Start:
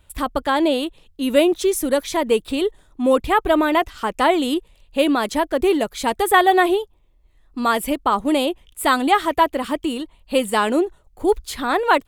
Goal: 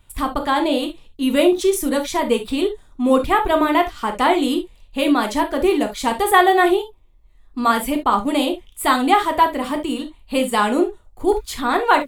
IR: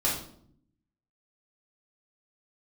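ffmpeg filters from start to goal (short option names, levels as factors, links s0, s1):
-filter_complex "[0:a]asplit=2[s0][s1];[1:a]atrim=start_sample=2205,atrim=end_sample=3528[s2];[s1][s2]afir=irnorm=-1:irlink=0,volume=0.299[s3];[s0][s3]amix=inputs=2:normalize=0,volume=0.75"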